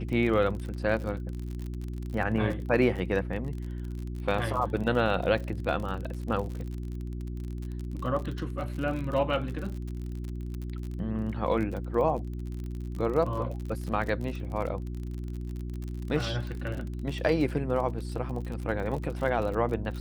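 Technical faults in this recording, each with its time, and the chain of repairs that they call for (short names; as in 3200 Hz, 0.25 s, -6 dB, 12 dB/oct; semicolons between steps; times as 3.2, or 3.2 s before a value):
crackle 44/s -34 dBFS
hum 60 Hz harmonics 6 -35 dBFS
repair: de-click; de-hum 60 Hz, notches 6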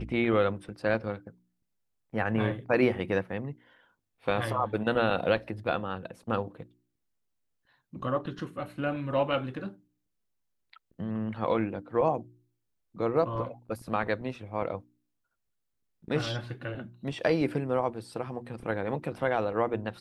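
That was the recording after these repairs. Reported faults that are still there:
none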